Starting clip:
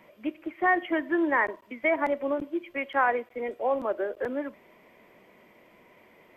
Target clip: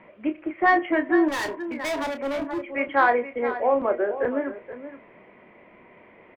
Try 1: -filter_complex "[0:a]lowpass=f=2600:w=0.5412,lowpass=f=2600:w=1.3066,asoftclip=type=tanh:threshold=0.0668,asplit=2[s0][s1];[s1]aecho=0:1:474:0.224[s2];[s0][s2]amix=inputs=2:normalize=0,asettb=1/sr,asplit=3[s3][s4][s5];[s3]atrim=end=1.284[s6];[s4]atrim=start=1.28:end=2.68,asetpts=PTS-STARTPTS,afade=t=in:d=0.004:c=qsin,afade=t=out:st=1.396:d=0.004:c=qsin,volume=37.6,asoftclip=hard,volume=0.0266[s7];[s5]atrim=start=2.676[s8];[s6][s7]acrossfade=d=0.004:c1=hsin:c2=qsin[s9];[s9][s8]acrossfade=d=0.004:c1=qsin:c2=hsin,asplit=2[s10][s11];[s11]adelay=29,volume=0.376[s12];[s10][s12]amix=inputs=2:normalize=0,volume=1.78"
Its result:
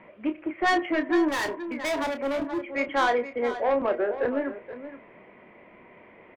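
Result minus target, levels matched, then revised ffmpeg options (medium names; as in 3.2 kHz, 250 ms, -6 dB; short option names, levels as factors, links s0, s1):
saturation: distortion +15 dB
-filter_complex "[0:a]lowpass=f=2600:w=0.5412,lowpass=f=2600:w=1.3066,asoftclip=type=tanh:threshold=0.251,asplit=2[s0][s1];[s1]aecho=0:1:474:0.224[s2];[s0][s2]amix=inputs=2:normalize=0,asettb=1/sr,asplit=3[s3][s4][s5];[s3]atrim=end=1.284[s6];[s4]atrim=start=1.28:end=2.68,asetpts=PTS-STARTPTS,afade=t=in:d=0.004:c=qsin,afade=t=out:st=1.396:d=0.004:c=qsin,volume=37.6,asoftclip=hard,volume=0.0266[s7];[s5]atrim=start=2.676[s8];[s6][s7]acrossfade=d=0.004:c1=hsin:c2=qsin[s9];[s9][s8]acrossfade=d=0.004:c1=qsin:c2=hsin,asplit=2[s10][s11];[s11]adelay=29,volume=0.376[s12];[s10][s12]amix=inputs=2:normalize=0,volume=1.78"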